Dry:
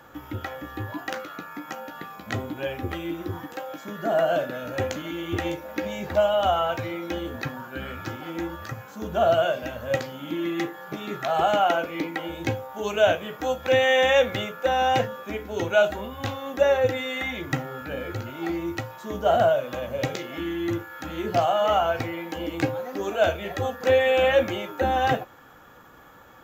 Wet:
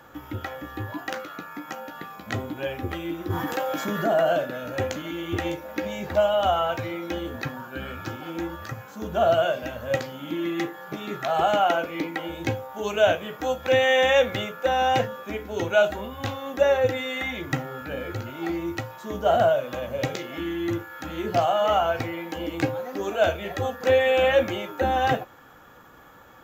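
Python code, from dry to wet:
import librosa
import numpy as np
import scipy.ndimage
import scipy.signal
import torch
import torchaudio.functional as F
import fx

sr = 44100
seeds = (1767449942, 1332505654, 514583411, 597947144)

y = fx.env_flatten(x, sr, amount_pct=50, at=(3.3, 4.33))
y = fx.notch(y, sr, hz=2000.0, q=12.0, at=(7.64, 8.42))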